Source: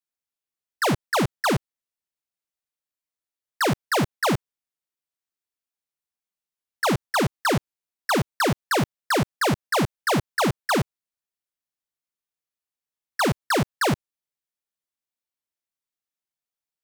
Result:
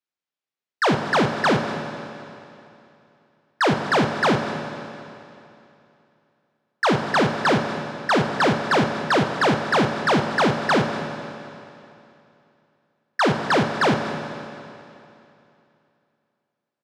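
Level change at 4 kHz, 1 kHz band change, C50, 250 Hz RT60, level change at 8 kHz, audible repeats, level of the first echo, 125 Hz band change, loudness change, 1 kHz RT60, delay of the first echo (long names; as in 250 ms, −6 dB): +2.0 dB, +4.5 dB, 6.0 dB, 2.8 s, −5.0 dB, 1, −18.0 dB, +1.0 dB, +3.0 dB, 2.8 s, 235 ms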